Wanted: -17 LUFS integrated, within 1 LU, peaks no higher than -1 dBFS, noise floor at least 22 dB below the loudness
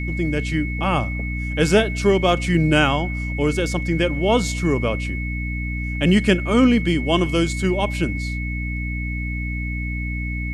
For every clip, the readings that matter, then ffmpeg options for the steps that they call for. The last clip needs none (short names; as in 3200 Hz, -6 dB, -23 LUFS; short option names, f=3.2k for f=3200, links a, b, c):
hum 60 Hz; harmonics up to 300 Hz; hum level -23 dBFS; steady tone 2200 Hz; tone level -30 dBFS; loudness -21.0 LUFS; peak -3.5 dBFS; loudness target -17.0 LUFS
-> -af "bandreject=f=60:t=h:w=6,bandreject=f=120:t=h:w=6,bandreject=f=180:t=h:w=6,bandreject=f=240:t=h:w=6,bandreject=f=300:t=h:w=6"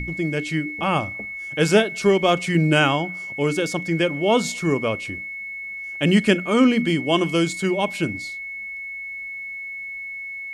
hum none; steady tone 2200 Hz; tone level -30 dBFS
-> -af "bandreject=f=2.2k:w=30"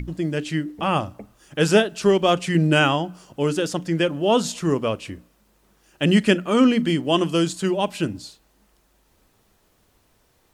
steady tone none; loudness -21.0 LUFS; peak -4.0 dBFS; loudness target -17.0 LUFS
-> -af "volume=4dB,alimiter=limit=-1dB:level=0:latency=1"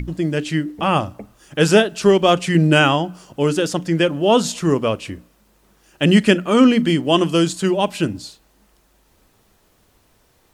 loudness -17.0 LUFS; peak -1.0 dBFS; noise floor -59 dBFS